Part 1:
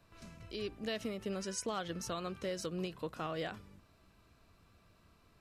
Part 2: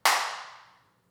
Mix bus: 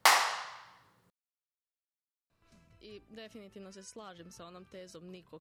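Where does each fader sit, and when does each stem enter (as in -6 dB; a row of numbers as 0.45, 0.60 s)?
-10.5, -0.5 dB; 2.30, 0.00 s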